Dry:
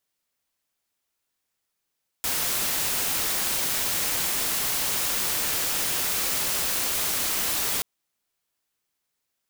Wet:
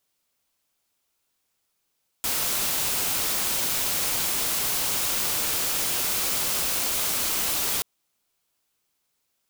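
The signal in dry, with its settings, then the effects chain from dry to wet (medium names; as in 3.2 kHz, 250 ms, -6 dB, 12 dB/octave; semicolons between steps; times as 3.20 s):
noise white, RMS -26 dBFS 5.58 s
peaking EQ 1.8 kHz -4 dB 0.37 oct; in parallel at -2.5 dB: integer overflow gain 28.5 dB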